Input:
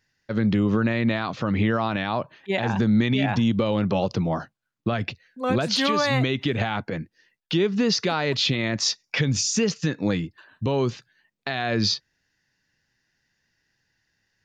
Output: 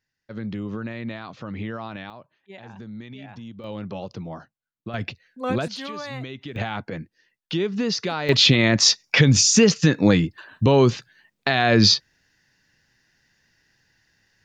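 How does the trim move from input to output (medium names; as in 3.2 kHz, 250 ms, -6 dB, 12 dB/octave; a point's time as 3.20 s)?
-9.5 dB
from 2.10 s -18 dB
from 3.64 s -10 dB
from 4.94 s -1.5 dB
from 5.68 s -11.5 dB
from 6.56 s -2.5 dB
from 8.29 s +7.5 dB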